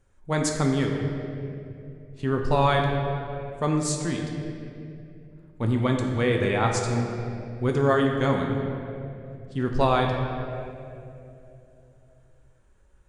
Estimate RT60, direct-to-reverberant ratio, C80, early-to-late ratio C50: 2.7 s, 1.0 dB, 4.5 dB, 3.0 dB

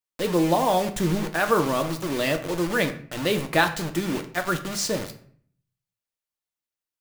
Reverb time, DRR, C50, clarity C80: 0.55 s, 5.5 dB, 12.5 dB, 16.0 dB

